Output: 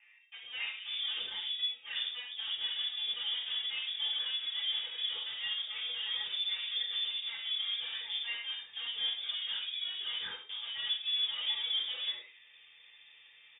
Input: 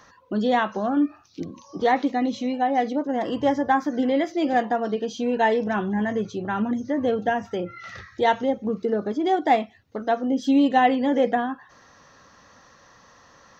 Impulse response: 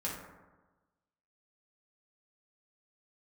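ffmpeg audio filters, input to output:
-filter_complex "[0:a]acrossover=split=750|2300[link_01][link_02][link_03];[link_01]adelay=540[link_04];[link_03]adelay=740[link_05];[link_04][link_02][link_05]amix=inputs=3:normalize=0,areverse,acompressor=threshold=-31dB:ratio=6,areverse,aeval=exprs='0.0708*(cos(1*acos(clip(val(0)/0.0708,-1,1)))-cos(1*PI/2))+0.01*(cos(8*acos(clip(val(0)/0.0708,-1,1)))-cos(8*PI/2))':channel_layout=same[link_06];[1:a]atrim=start_sample=2205,atrim=end_sample=6174[link_07];[link_06][link_07]afir=irnorm=-1:irlink=0,lowpass=frequency=3100:width_type=q:width=0.5098,lowpass=frequency=3100:width_type=q:width=0.6013,lowpass=frequency=3100:width_type=q:width=0.9,lowpass=frequency=3100:width_type=q:width=2.563,afreqshift=-3700,volume=-7.5dB"

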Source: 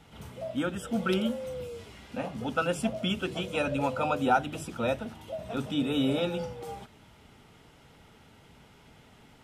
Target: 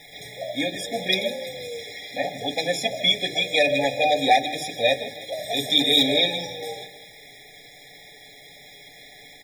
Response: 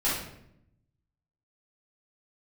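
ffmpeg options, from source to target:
-filter_complex "[0:a]bandreject=frequency=50:width_type=h:width=6,bandreject=frequency=100:width_type=h:width=6,bandreject=frequency=150:width_type=h:width=6,bandreject=frequency=200:width_type=h:width=6,bandreject=frequency=250:width_type=h:width=6,bandreject=frequency=300:width_type=h:width=6,bandreject=frequency=350:width_type=h:width=6,bandreject=frequency=400:width_type=h:width=6,bandreject=frequency=450:width_type=h:width=6,aecho=1:1:6.9:0.63,asoftclip=type=hard:threshold=-19.5dB,crystalizer=i=7.5:c=0,acrossover=split=410 5100:gain=0.224 1 0.0891[link_01][link_02][link_03];[link_01][link_02][link_03]amix=inputs=3:normalize=0,acontrast=28,asettb=1/sr,asplit=3[link_04][link_05][link_06];[link_04]atrim=end=5.324[link_07];[link_05]atrim=start=5.32:end=6.03,asetpts=PTS-STARTPTS,afade=type=in:duration=0.004:curve=qsin,afade=type=out:start_time=0.706:duration=0.004:curve=qsin,aemphasis=mode=production:type=50kf[link_08];[link_06]atrim=start=6.026[link_09];[link_07][link_08]acrossfade=duration=0.004:curve1=hsin:curve2=qsin[link_10];[link_10][link_09]acrossfade=duration=0.004:curve1=qsin:curve2=hsin,aecho=1:1:159|318|477|636|795:0.158|0.084|0.0445|0.0236|0.0125,acrusher=bits=9:dc=4:mix=0:aa=0.000001,afftfilt=real='re*eq(mod(floor(b*sr/1024/820),2),0)':imag='im*eq(mod(floor(b*sr/1024/820),2),0)':win_size=1024:overlap=0.75,volume=2.5dB"

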